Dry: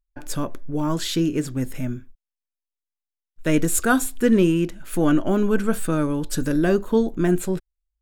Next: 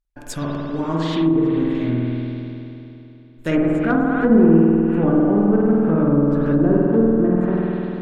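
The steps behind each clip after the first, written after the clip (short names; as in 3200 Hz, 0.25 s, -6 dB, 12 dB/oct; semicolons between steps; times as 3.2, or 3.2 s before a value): added harmonics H 6 -15 dB, 8 -17 dB, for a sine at -3.5 dBFS; spring tank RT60 3.1 s, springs 49 ms, chirp 60 ms, DRR -5 dB; treble ducked by the level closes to 840 Hz, closed at -11 dBFS; gain -1 dB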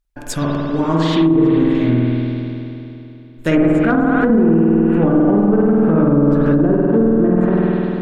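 limiter -11.5 dBFS, peak gain reduction 9 dB; gain +6 dB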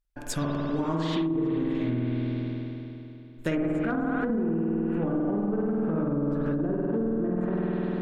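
compressor, threshold -17 dBFS, peak gain reduction 8 dB; gain -7 dB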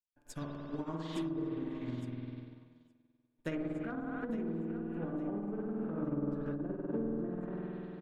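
feedback echo 0.862 s, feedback 45%, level -13 dB; upward expander 2.5:1, over -43 dBFS; gain -7.5 dB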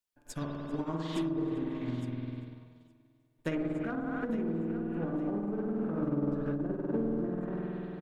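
in parallel at -10 dB: one-sided clip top -42.5 dBFS; on the sum: feedback echo 0.393 s, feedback 44%, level -23 dB; gain +2.5 dB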